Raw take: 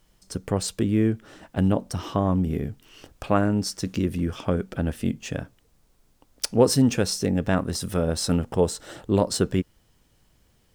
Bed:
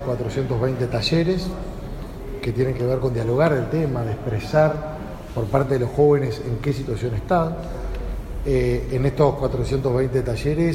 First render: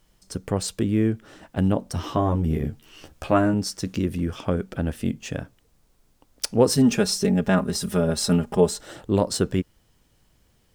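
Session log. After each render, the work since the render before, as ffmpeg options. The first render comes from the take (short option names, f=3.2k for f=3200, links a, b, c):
-filter_complex "[0:a]asettb=1/sr,asplit=3[a][b][c];[a]atrim=end=1.934[d];[b]atrim=start=1.93:end=3.54,asetpts=PTS-STARTPTS,afade=t=in:d=0.004:c=qsin,afade=t=out:st=1.606:d=0.004:c=qsin,asplit=2[e][f];[f]adelay=13,volume=-3dB[g];[e][g]amix=inputs=2:normalize=0,atrim=end_sample=71001[h];[c]atrim=start=3.536[i];[d][h]acrossfade=d=0.004:c1=hsin:c2=qsin[j];[j][i]acrossfade=d=0.004:c1=qsin:c2=hsin,asettb=1/sr,asplit=3[k][l][m];[k]atrim=end=6.774[n];[l]atrim=start=6.77:end=8.81,asetpts=PTS-STARTPTS,afade=t=in:d=0.004:c=qsin,afade=t=out:st=2.036:d=0.004:c=qsin,aecho=1:1:4.9:0.82,atrim=end_sample=89964[o];[m]atrim=start=8.806[p];[n][o]acrossfade=d=0.004:c1=hsin:c2=qsin[q];[q][p]acrossfade=d=0.004:c1=qsin:c2=hsin"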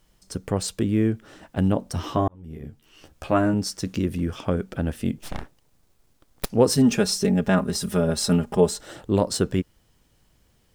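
-filter_complex "[0:a]asettb=1/sr,asplit=3[a][b][c];[a]atrim=end=5.184[d];[b]atrim=start=5.18:end=6.5,asetpts=PTS-STARTPTS,afade=t=in:d=0.004:c=qsin,afade=t=out:st=1.316:d=0.004:c=qsin,aeval=exprs='abs(val(0))':c=same[e];[c]atrim=start=6.496[f];[d][e]acrossfade=d=0.004:c1=hsin:c2=qsin[g];[g][f]acrossfade=d=0.004:c1=qsin:c2=hsin,asplit=2[h][i];[h]atrim=end=2.28,asetpts=PTS-STARTPTS,afade=t=out:st=2.276:d=0.004:c=hsin[j];[i]atrim=start=2.28,asetpts=PTS-STARTPTS,afade=t=in:d=1.26[k];[j][k]concat=n=2:v=0:a=1"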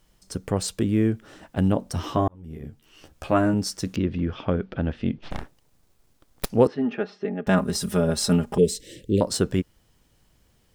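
-filter_complex "[0:a]asettb=1/sr,asplit=3[a][b][c];[a]atrim=end=3.964[d];[b]atrim=start=3.96:end=5.31,asetpts=PTS-STARTPTS,afade=t=in:d=0.004:c=qsin,afade=t=out:st=1.346:d=0.004:c=qsin,lowpass=f=4.1k:w=0.5412,lowpass=f=4.1k:w=1.3066[e];[c]atrim=start=5.306[f];[d][e]acrossfade=d=0.004:c1=hsin:c2=qsin[g];[g][f]acrossfade=d=0.004:c1=qsin:c2=hsin,asettb=1/sr,asplit=3[h][i][j];[h]atrim=end=6.674[k];[i]atrim=start=6.67:end=7.47,asetpts=PTS-STARTPTS,afade=t=in:d=0.004:c=qsin,afade=t=out:st=0.796:d=0.004:c=qsin,highpass=360,equalizer=f=520:t=q:w=4:g=-7,equalizer=f=1k:t=q:w=4:g=-8,equalizer=f=1.5k:t=q:w=4:g=-4,equalizer=f=2.3k:t=q:w=4:g=-6,lowpass=f=2.4k:w=0.5412,lowpass=f=2.4k:w=1.3066[l];[j]atrim=start=7.466[m];[k][l]acrossfade=d=0.004:c1=hsin:c2=qsin[n];[n][m]acrossfade=d=0.004:c1=qsin:c2=hsin,asettb=1/sr,asplit=3[o][p][q];[o]atrim=end=8.584[r];[p]atrim=start=8.58:end=9.21,asetpts=PTS-STARTPTS,afade=t=in:d=0.004:c=qsin,afade=t=out:st=0.626:d=0.004:c=qsin,asuperstop=centerf=1000:order=12:qfactor=0.72[s];[q]atrim=start=9.206[t];[r][s]acrossfade=d=0.004:c1=hsin:c2=qsin[u];[u][t]acrossfade=d=0.004:c1=qsin:c2=hsin"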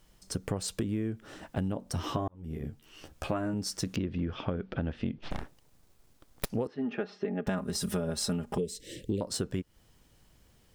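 -af "acompressor=threshold=-28dB:ratio=16"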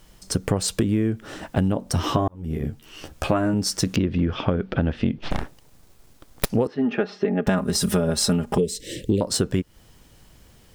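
-af "volume=10.5dB"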